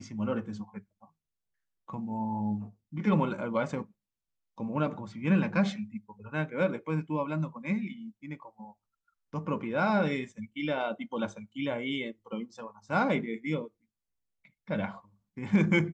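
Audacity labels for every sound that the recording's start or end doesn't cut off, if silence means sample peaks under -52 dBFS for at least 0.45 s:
1.890000	3.910000	sound
4.580000	8.720000	sound
9.330000	13.680000	sound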